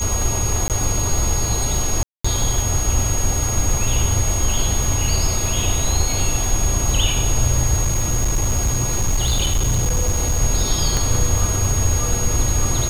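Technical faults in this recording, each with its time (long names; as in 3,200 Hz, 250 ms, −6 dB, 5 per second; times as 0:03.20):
surface crackle 210 per second −24 dBFS
whistle 6,600 Hz −23 dBFS
0:00.68–0:00.70: drop-out 18 ms
0:02.03–0:02.25: drop-out 215 ms
0:07.84–0:10.41: clipping −13.5 dBFS
0:10.97: click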